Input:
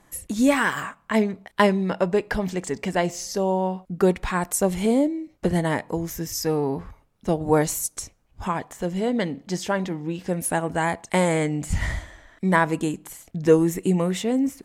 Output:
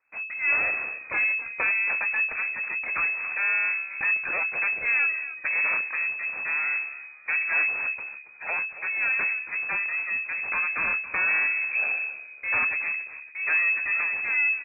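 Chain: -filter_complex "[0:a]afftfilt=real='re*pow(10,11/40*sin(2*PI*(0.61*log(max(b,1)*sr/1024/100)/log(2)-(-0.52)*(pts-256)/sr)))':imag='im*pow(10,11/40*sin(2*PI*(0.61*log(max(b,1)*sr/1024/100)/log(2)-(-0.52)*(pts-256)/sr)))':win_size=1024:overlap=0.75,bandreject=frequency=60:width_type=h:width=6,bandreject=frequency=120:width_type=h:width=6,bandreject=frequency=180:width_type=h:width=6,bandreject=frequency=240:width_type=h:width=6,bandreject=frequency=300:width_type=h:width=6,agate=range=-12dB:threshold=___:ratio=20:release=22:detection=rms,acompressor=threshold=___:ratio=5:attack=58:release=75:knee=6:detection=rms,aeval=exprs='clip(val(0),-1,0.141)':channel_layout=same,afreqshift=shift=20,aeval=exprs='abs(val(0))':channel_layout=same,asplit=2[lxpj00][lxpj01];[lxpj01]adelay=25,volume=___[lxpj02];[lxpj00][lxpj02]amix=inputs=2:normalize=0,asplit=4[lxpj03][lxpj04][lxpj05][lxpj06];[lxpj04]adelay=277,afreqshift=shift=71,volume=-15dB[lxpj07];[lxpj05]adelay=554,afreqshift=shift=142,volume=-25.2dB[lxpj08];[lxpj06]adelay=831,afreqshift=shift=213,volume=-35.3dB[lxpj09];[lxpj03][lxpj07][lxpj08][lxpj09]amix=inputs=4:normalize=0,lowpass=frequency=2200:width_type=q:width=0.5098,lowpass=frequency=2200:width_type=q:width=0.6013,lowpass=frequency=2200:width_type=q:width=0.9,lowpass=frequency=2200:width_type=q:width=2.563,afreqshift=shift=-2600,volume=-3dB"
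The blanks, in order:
-44dB, -21dB, -13.5dB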